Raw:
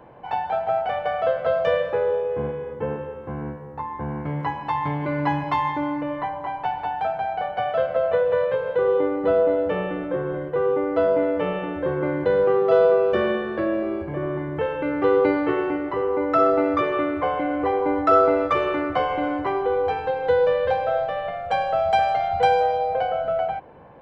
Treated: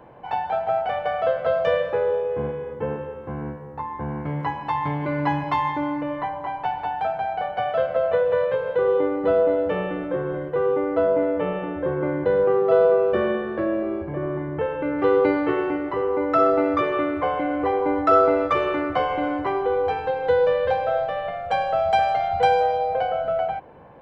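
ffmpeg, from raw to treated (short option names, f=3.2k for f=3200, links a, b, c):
-filter_complex "[0:a]asettb=1/sr,asplit=3[a][b][c];[a]atrim=end=10.954[d];[b]atrim=start=10.95:end=14.99,asetpts=PTS-STARTPTS,afade=t=in:d=0.004:c=qsin,afade=t=out:st=4.036:d=0.004:c=qsin,aemphasis=mode=reproduction:type=75kf[e];[c]atrim=start=14.986[f];[d][e]acrossfade=d=0.004:c1=hsin:c2=qsin[g];[g][f]acrossfade=d=0.004:c1=qsin:c2=hsin"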